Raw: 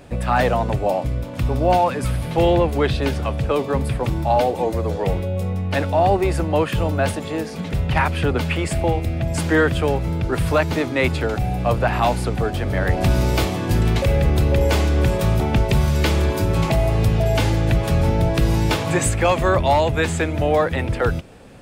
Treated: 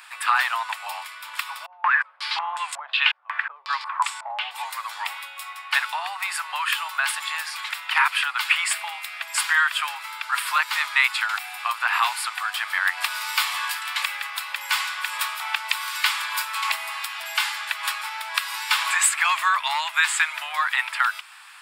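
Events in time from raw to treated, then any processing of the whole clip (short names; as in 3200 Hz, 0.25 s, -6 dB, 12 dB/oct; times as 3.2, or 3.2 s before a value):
1.66–4.51 stepped low-pass 5.5 Hz 230–8000 Hz
whole clip: compressor, threshold -18 dBFS; steep high-pass 1000 Hz 48 dB/oct; bell 6200 Hz -9 dB 0.23 oct; gain +8.5 dB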